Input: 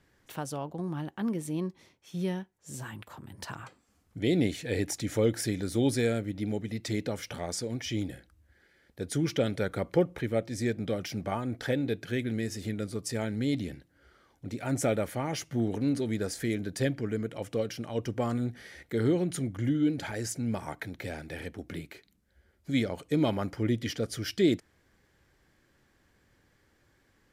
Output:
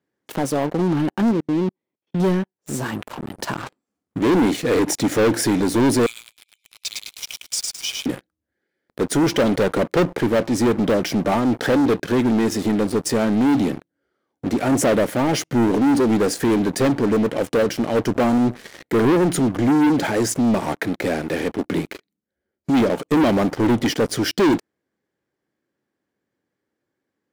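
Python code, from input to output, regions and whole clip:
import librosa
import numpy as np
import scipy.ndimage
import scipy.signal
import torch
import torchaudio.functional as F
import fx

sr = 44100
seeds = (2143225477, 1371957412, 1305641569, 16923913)

y = fx.chain(x, sr, fx.level_steps(step_db=18),
    fx.air_absorb(metres=300.0), at=(1.31, 2.2))
y = fx.chain(y, sr, fx.steep_highpass(hz=2300.0, slope=96),
    fx.echo_feedback(ms=106, feedback_pct=46, wet_db=-3.0), at=(6.06, 8.06))
y = scipy.signal.sosfilt(scipy.signal.butter(2, 260.0, 'highpass', fs=sr, output='sos'), y)
y = fx.tilt_shelf(y, sr, db=6.5, hz=640.0)
y = fx.leveller(y, sr, passes=5)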